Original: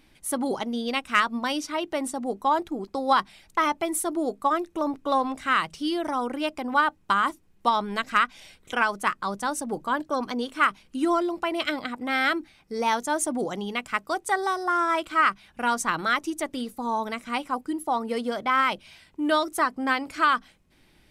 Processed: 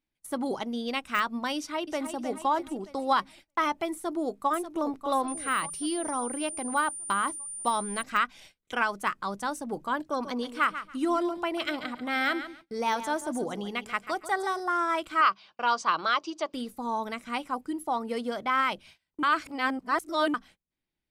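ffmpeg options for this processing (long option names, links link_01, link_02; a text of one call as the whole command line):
ffmpeg -i in.wav -filter_complex "[0:a]asplit=2[link_01][link_02];[link_02]afade=type=in:start_time=1.56:duration=0.01,afade=type=out:start_time=2.15:duration=0.01,aecho=0:1:310|620|930|1240|1550|1860:0.398107|0.199054|0.0995268|0.0497634|0.0248817|0.0124408[link_03];[link_01][link_03]amix=inputs=2:normalize=0,asplit=2[link_04][link_05];[link_05]afade=type=in:start_time=3.94:duration=0.01,afade=type=out:start_time=4.51:duration=0.01,aecho=0:1:590|1180|1770|2360|2950|3540:0.298538|0.164196|0.0903078|0.0496693|0.0273181|0.015025[link_06];[link_04][link_06]amix=inputs=2:normalize=0,asettb=1/sr,asplit=3[link_07][link_08][link_09];[link_07]atrim=end=5.284[link_10];[link_08]atrim=start=5.28:end=8.03,asetpts=PTS-STARTPTS,afade=type=in:duration=0.004:curve=qsin,afade=type=out:start_time=2.746:duration=0.004:curve=qsin,aeval=exprs='val(0)+0.0282*sin(2*PI*9200*n/s)':channel_layout=same[link_11];[link_09]atrim=start=8.026[link_12];[link_10][link_11]acrossfade=duration=0.004:curve1=hsin:curve2=qsin[link_13];[link_13][link_12]acrossfade=duration=0.004:curve1=qsin:curve2=hsin,asettb=1/sr,asplit=3[link_14][link_15][link_16];[link_14]atrim=end=10.014[link_17];[link_15]atrim=start=10.01:end=14.6,asetpts=PTS-STARTPTS,afade=type=in:duration=0.004:curve=qsin,afade=type=out:start_time=4.586:duration=0.004:curve=qsin,aecho=1:1:140|280|420:0.251|0.0502|0.01,atrim=end_sample=202419[link_18];[link_16]atrim=start=14.596[link_19];[link_17][link_18]acrossfade=duration=0.004:curve1=hsin:curve2=qsin[link_20];[link_20][link_19]acrossfade=duration=0.004:curve1=qsin:curve2=hsin,asettb=1/sr,asplit=3[link_21][link_22][link_23];[link_21]atrim=end=15.214[link_24];[link_22]atrim=start=15.21:end=16.54,asetpts=PTS-STARTPTS,afade=type=in:duration=0.004:curve=qsin,afade=type=out:start_time=1.326:duration=0.004:curve=qsin,highpass=250,equalizer=frequency=260:width_type=q:width=4:gain=-8,equalizer=frequency=600:width_type=q:width=4:gain=4,equalizer=frequency=1100:width_type=q:width=4:gain=8,equalizer=frequency=1900:width_type=q:width=4:gain=-6,equalizer=frequency=3000:width_type=q:width=4:gain=5,equalizer=frequency=4700:width_type=q:width=4:gain=9,lowpass=frequency=5900:width=0.5412,lowpass=frequency=5900:width=1.3066[link_25];[link_23]atrim=start=16.536[link_26];[link_24][link_25]acrossfade=duration=0.004:curve1=hsin:curve2=qsin[link_27];[link_27][link_26]acrossfade=duration=0.004:curve1=qsin:curve2=hsin,asplit=3[link_28][link_29][link_30];[link_28]atrim=end=19.232[link_31];[link_29]atrim=start=19.228:end=20.342,asetpts=PTS-STARTPTS,areverse[link_32];[link_30]atrim=start=20.338[link_33];[link_31][link_32]acrossfade=duration=0.004:curve1=hsin:curve2=hsin[link_34];[link_34][link_33]acrossfade=duration=0.004:curve1=hsin:curve2=hsin,deesser=0.6,agate=range=-25dB:threshold=-46dB:ratio=16:detection=peak,volume=-3.5dB" out.wav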